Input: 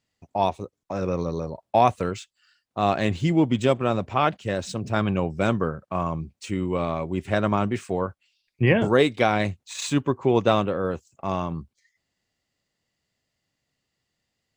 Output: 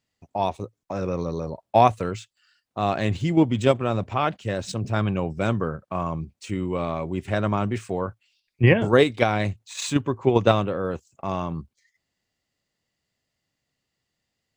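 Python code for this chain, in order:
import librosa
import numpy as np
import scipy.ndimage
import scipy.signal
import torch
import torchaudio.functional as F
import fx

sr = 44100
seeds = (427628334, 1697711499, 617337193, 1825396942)

p1 = fx.level_steps(x, sr, step_db=18)
p2 = x + (p1 * librosa.db_to_amplitude(1.0))
p3 = fx.dynamic_eq(p2, sr, hz=110.0, q=7.4, threshold_db=-43.0, ratio=4.0, max_db=6)
y = p3 * librosa.db_to_amplitude(-3.5)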